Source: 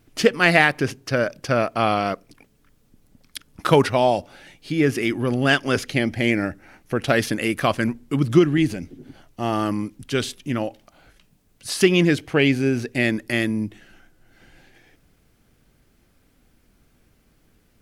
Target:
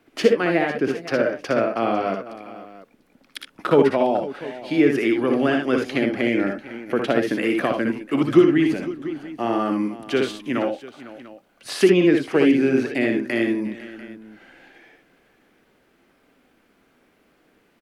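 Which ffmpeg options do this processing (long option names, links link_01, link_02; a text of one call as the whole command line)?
ffmpeg -i in.wav -filter_complex "[0:a]acrossover=split=230 3300:gain=0.0794 1 0.251[link_01][link_02][link_03];[link_01][link_02][link_03]amix=inputs=3:normalize=0,acrossover=split=480[link_04][link_05];[link_05]acompressor=threshold=-30dB:ratio=6[link_06];[link_04][link_06]amix=inputs=2:normalize=0,asplit=2[link_07][link_08];[link_08]aecho=0:1:61|76|503|694:0.562|0.376|0.158|0.126[link_09];[link_07][link_09]amix=inputs=2:normalize=0,volume=4.5dB" out.wav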